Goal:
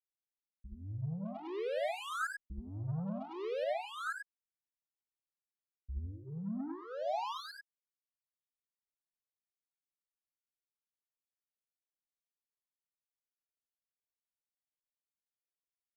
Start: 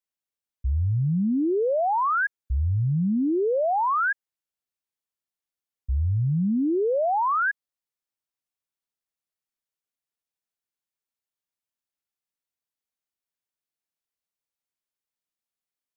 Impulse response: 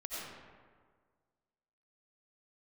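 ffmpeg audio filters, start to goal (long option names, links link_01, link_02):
-filter_complex "[0:a]bandreject=frequency=60:width_type=h:width=6,bandreject=frequency=120:width_type=h:width=6,bandreject=frequency=180:width_type=h:width=6,bandreject=frequency=240:width_type=h:width=6,bandreject=frequency=300:width_type=h:width=6,asettb=1/sr,asplit=3[link_01][link_02][link_03];[link_01]atrim=end=1.254[link_04];[link_02]atrim=start=1.25:end=3.64,asetpts=PTS-STARTPTS,afade=type=in:duration=0.004:curve=qsin,afade=type=out:start_time=2.386:duration=0.004:curve=qsin,acontrast=32[link_05];[link_03]atrim=start=3.636[link_06];[link_04][link_05]acrossfade=duration=0.004:curve1=hsin:curve2=qsin[link_07];[link_07][link_06]acrossfade=duration=0.004:curve1=qsin:curve2=hsin,asoftclip=type=tanh:threshold=-24.5dB,adynamicsmooth=sensitivity=4:basefreq=570[link_08];[1:a]atrim=start_sample=2205,atrim=end_sample=4410[link_09];[link_08][link_09]afir=irnorm=-1:irlink=0,asplit=2[link_10][link_11];[link_11]afreqshift=-0.51[link_12];[link_10][link_12]amix=inputs=2:normalize=1,volume=-5dB"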